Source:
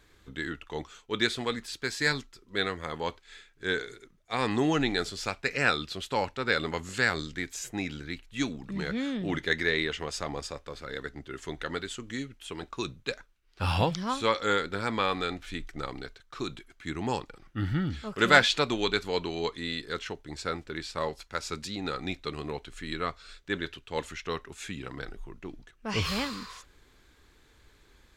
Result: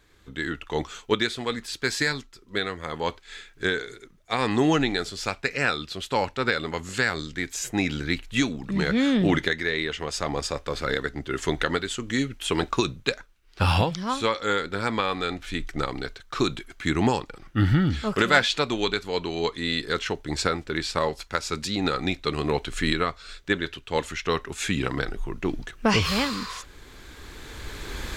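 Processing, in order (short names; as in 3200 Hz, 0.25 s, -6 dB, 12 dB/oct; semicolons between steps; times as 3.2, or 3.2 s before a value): recorder AGC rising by 11 dB/s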